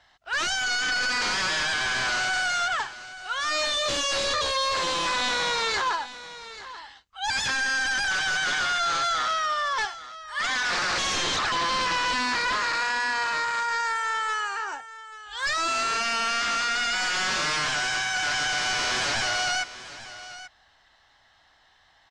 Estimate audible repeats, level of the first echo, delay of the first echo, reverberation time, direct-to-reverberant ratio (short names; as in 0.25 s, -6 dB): 1, -15.0 dB, 0.837 s, none, none